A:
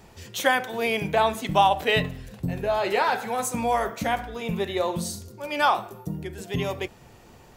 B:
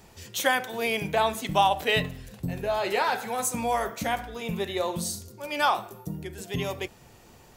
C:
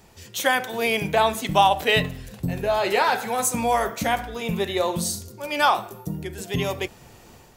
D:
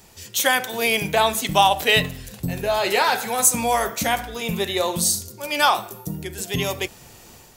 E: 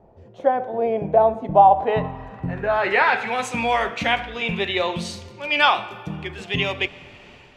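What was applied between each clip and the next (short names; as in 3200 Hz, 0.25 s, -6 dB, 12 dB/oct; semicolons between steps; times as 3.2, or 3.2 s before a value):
high shelf 4000 Hz +6 dB; gain -3 dB
AGC gain up to 5 dB
high shelf 3200 Hz +9 dB
digital reverb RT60 2.7 s, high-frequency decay 0.65×, pre-delay 50 ms, DRR 19 dB; low-pass sweep 650 Hz -> 2700 Hz, 1.48–3.43; gain -1 dB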